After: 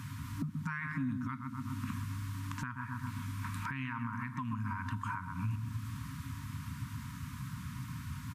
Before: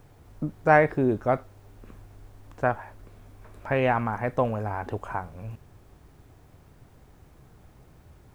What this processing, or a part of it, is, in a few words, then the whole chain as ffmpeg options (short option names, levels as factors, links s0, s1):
podcast mastering chain: -filter_complex "[0:a]afftfilt=real='re*(1-between(b*sr/4096,290,920))':imag='im*(1-between(b*sr/4096,290,920))':win_size=4096:overlap=0.75,highpass=f=85:w=0.5412,highpass=f=85:w=1.3066,asplit=2[s0][s1];[s1]adelay=128,lowpass=f=1200:p=1,volume=0.398,asplit=2[s2][s3];[s3]adelay=128,lowpass=f=1200:p=1,volume=0.5,asplit=2[s4][s5];[s5]adelay=128,lowpass=f=1200:p=1,volume=0.5,asplit=2[s6][s7];[s7]adelay=128,lowpass=f=1200:p=1,volume=0.5,asplit=2[s8][s9];[s9]adelay=128,lowpass=f=1200:p=1,volume=0.5,asplit=2[s10][s11];[s11]adelay=128,lowpass=f=1200:p=1,volume=0.5[s12];[s0][s2][s4][s6][s8][s10][s12]amix=inputs=7:normalize=0,deesser=0.7,acompressor=threshold=0.00447:ratio=2.5,alimiter=level_in=6.68:limit=0.0631:level=0:latency=1:release=390,volume=0.15,volume=5.01" -ar 32000 -c:a libmp3lame -b:a 96k